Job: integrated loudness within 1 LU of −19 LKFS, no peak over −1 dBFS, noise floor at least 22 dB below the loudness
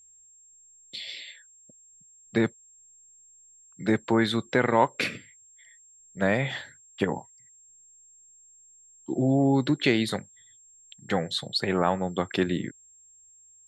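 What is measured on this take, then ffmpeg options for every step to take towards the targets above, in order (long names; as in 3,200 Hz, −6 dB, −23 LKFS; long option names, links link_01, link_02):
interfering tone 7,500 Hz; level of the tone −53 dBFS; integrated loudness −27.0 LKFS; sample peak −7.5 dBFS; target loudness −19.0 LKFS
→ -af "bandreject=frequency=7500:width=30"
-af "volume=8dB,alimiter=limit=-1dB:level=0:latency=1"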